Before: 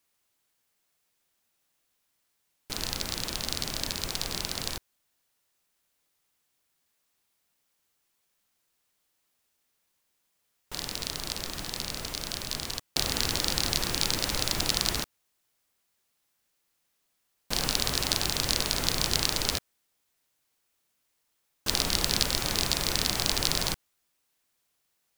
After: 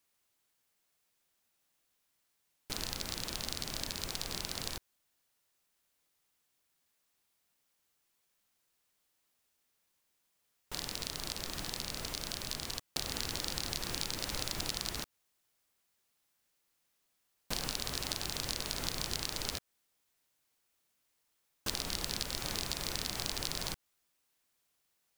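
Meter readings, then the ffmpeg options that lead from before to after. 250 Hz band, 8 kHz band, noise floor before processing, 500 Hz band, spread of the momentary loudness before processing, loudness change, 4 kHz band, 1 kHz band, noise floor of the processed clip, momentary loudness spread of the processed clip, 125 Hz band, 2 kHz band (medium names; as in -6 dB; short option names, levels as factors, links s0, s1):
-8.5 dB, -8.5 dB, -76 dBFS, -8.5 dB, 8 LU, -9.0 dB, -9.0 dB, -8.5 dB, -79 dBFS, 4 LU, -8.5 dB, -8.5 dB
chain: -af "acompressor=threshold=0.0282:ratio=3,volume=0.75"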